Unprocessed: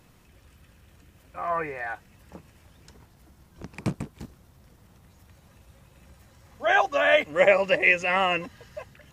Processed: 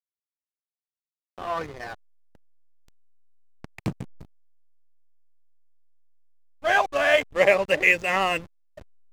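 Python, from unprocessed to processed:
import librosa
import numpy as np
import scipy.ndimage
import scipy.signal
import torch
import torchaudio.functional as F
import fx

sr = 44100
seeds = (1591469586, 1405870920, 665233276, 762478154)

y = fx.high_shelf(x, sr, hz=2800.0, db=4.0)
y = fx.backlash(y, sr, play_db=-26.0)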